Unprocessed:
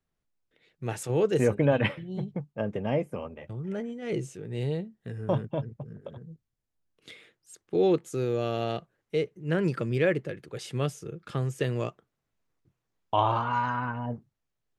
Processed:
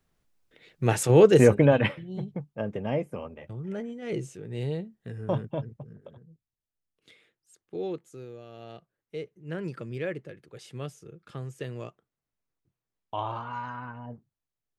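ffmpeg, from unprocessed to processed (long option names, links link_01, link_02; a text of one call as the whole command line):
ffmpeg -i in.wav -af "volume=19dB,afade=type=out:start_time=1.2:duration=0.73:silence=0.316228,afade=type=out:start_time=5.6:duration=0.66:silence=0.398107,afade=type=out:start_time=7.74:duration=0.72:silence=0.354813,afade=type=in:start_time=8.46:duration=0.85:silence=0.316228" out.wav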